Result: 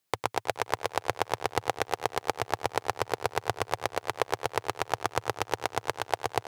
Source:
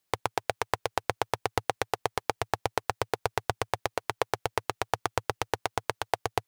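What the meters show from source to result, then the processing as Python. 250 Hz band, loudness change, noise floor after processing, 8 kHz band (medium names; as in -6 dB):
+0.5 dB, +0.5 dB, -59 dBFS, +0.5 dB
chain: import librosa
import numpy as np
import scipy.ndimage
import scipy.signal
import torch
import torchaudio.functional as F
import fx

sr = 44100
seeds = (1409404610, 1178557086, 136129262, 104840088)

y = scipy.signal.sosfilt(scipy.signal.butter(2, 80.0, 'highpass', fs=sr, output='sos'), x)
y = fx.echo_warbled(y, sr, ms=106, feedback_pct=56, rate_hz=2.8, cents=89, wet_db=-9.5)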